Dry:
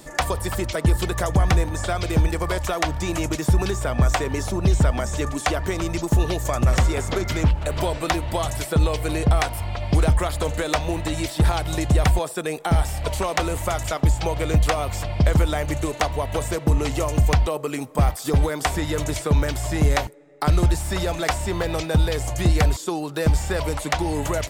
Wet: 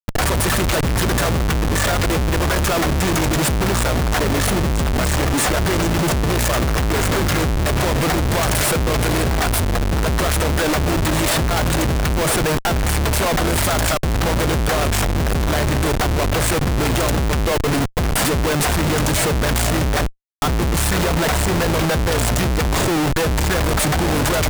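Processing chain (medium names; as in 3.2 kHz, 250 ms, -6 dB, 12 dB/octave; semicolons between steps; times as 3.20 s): fifteen-band graphic EQ 160 Hz +5 dB, 1.6 kHz +8 dB, 10 kHz +6 dB; compression 8:1, threshold -20 dBFS, peak gain reduction 9.5 dB; expander -28 dBFS; treble shelf 9.9 kHz +10.5 dB; Schmitt trigger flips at -29.5 dBFS; trim +7 dB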